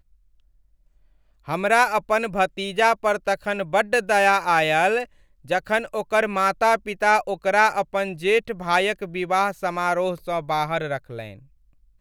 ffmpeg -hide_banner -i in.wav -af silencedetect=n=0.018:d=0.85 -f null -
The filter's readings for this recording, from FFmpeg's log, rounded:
silence_start: 0.00
silence_end: 1.48 | silence_duration: 1.48